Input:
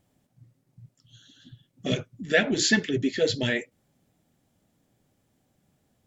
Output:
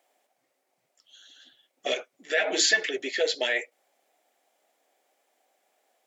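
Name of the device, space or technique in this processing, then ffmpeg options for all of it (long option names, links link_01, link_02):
laptop speaker: -filter_complex "[0:a]highpass=frequency=440:width=0.5412,highpass=frequency=440:width=1.3066,equalizer=frequency=720:width_type=o:width=0.44:gain=7,equalizer=frequency=2200:width_type=o:width=0.59:gain=5,alimiter=limit=-17dB:level=0:latency=1:release=108,asettb=1/sr,asplit=3[link_01][link_02][link_03];[link_01]atrim=end=2.374[link_04];[link_02]atrim=start=2.37:end=2.89,asetpts=PTS-STARTPTS,afade=type=in:duration=0.004:curve=qsin,afade=type=out:start_time=0.516:duration=0.004:curve=qsin,aecho=1:1:6.3:0.98,atrim=end_sample=22932[link_05];[link_03]atrim=start=2.886[link_06];[link_04][link_05]acrossfade=duration=0.004:curve1=hsin:curve2=qsin[link_07];[link_07][link_06]acrossfade=duration=0.004:curve1=qsin:curve2=hsin,volume=2dB"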